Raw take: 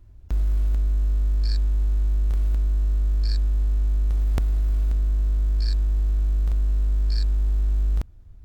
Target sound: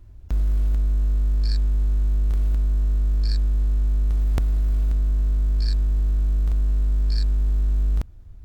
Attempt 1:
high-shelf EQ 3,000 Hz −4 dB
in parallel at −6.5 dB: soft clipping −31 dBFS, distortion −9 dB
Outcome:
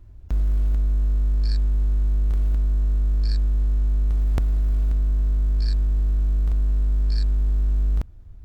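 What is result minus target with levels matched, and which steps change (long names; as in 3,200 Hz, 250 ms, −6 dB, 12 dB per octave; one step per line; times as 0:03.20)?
8,000 Hz band −3.5 dB
remove: high-shelf EQ 3,000 Hz −4 dB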